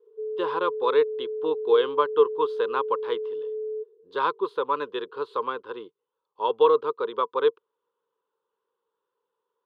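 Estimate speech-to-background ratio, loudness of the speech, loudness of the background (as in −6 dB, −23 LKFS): 6.5 dB, −26.0 LKFS, −32.5 LKFS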